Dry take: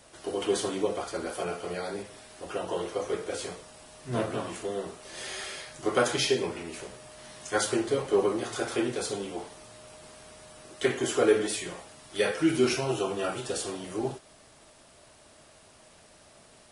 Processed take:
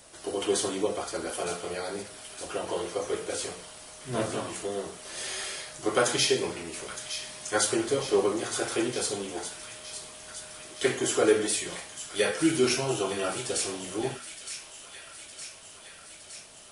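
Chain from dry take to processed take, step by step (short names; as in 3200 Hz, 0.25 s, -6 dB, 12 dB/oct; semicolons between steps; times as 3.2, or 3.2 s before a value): high shelf 5200 Hz +7.5 dB; notches 60/120/180/240 Hz; thin delay 0.914 s, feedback 69%, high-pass 1800 Hz, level -9.5 dB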